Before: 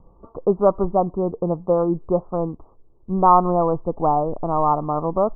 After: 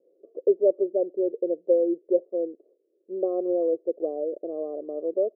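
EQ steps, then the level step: Chebyshev high-pass 360 Hz, order 4; elliptic low-pass 560 Hz, stop band 40 dB; 0.0 dB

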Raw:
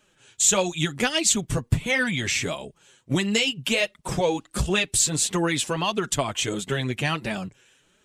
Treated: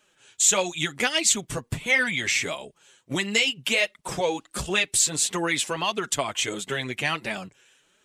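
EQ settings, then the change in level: dynamic bell 2.1 kHz, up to +5 dB, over -42 dBFS, Q 5; bass shelf 240 Hz -11.5 dB; 0.0 dB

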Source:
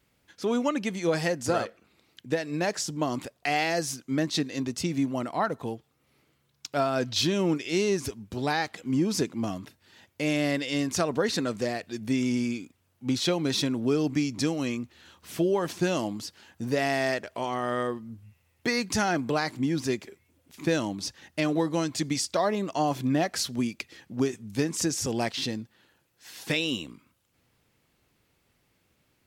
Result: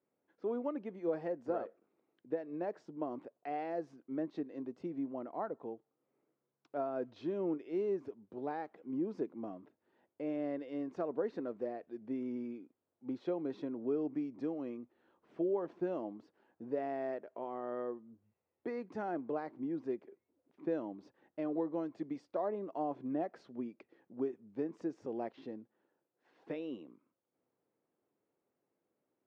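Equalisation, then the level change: ladder band-pass 420 Hz, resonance 30%; peaking EQ 290 Hz -5 dB 1.5 oct; +4.5 dB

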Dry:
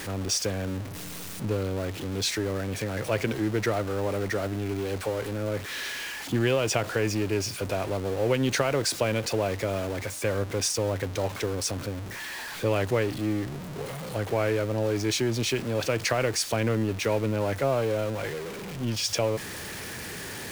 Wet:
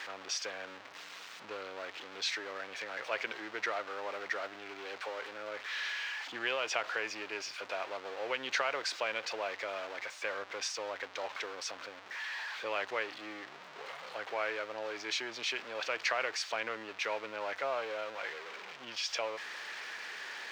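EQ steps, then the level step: high-pass 1 kHz 12 dB/octave; distance through air 190 m; treble shelf 9.3 kHz +4 dB; 0.0 dB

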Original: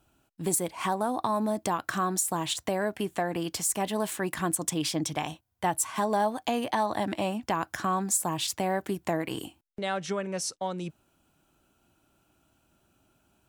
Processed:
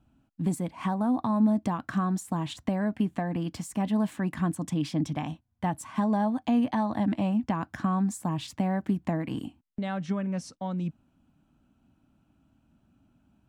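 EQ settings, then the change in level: low-pass 1.8 kHz 6 dB/octave; resonant low shelf 310 Hz +6 dB, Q 3; band-stop 1.4 kHz, Q 26; -2.0 dB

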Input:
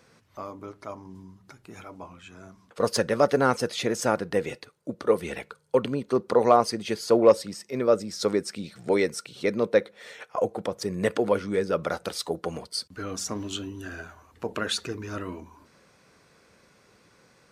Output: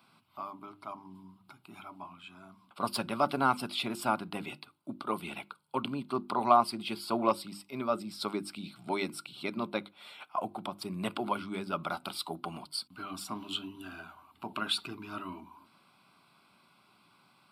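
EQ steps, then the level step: high-pass 190 Hz 12 dB/octave; hum notches 50/100/150/200/250/300/350 Hz; static phaser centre 1.8 kHz, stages 6; 0.0 dB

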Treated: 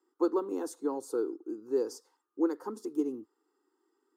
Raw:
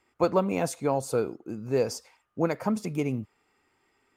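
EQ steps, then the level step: resonant high-pass 320 Hz, resonance Q 3.6; static phaser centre 630 Hz, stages 6; -8.5 dB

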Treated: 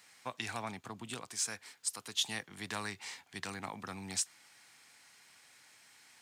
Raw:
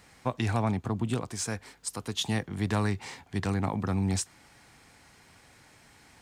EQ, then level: high-pass 130 Hz 12 dB/octave; tilt shelf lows -8.5 dB, about 930 Hz; -8.5 dB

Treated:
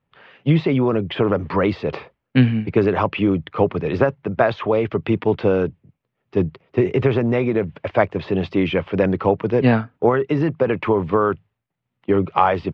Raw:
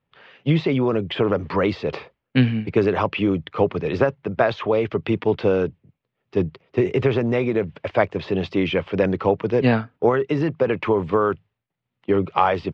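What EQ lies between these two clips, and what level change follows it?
peaking EQ 460 Hz -2 dB; treble shelf 3.7 kHz -9.5 dB; +3.0 dB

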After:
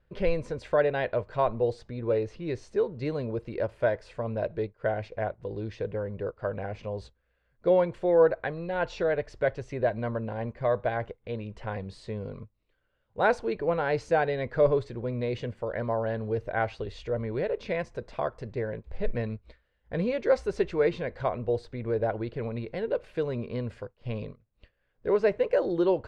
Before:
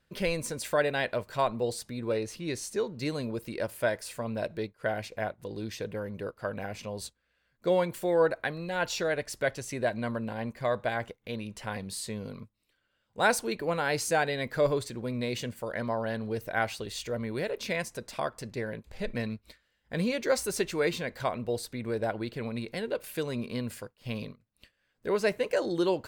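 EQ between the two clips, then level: distance through air 100 m; RIAA curve playback; resonant low shelf 330 Hz -7 dB, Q 1.5; 0.0 dB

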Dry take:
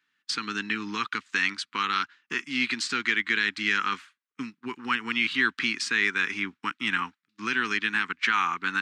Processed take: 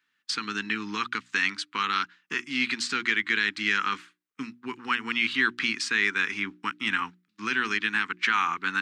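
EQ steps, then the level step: hum notches 60/120/180/240/300/360 Hz; 0.0 dB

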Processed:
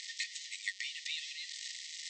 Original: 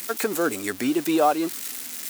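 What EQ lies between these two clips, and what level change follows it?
brick-wall FIR band-pass 1.8–8.4 kHz; distance through air 180 m; peaking EQ 2.4 kHz -12 dB 0.69 oct; +6.5 dB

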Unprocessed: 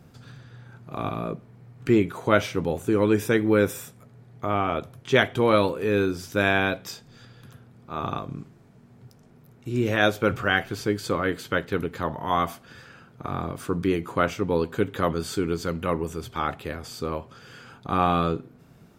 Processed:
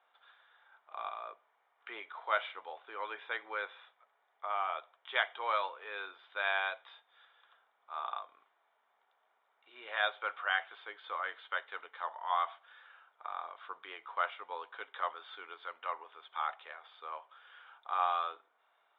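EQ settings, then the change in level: high-pass 760 Hz 24 dB/octave; rippled Chebyshev low-pass 3.7 kHz, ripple 3 dB; band-stop 2.6 kHz, Q 6.8; -6.0 dB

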